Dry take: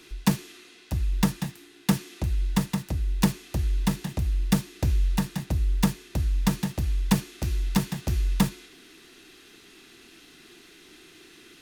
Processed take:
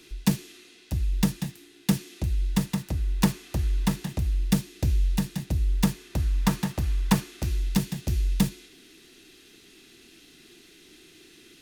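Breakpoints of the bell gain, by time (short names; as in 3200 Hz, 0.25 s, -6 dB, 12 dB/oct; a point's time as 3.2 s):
bell 1100 Hz 1.6 oct
2.41 s -6.5 dB
3.07 s +0.5 dB
3.82 s +0.5 dB
4.68 s -6.5 dB
5.5 s -6.5 dB
6.4 s +3.5 dB
7.14 s +3.5 dB
7.85 s -8 dB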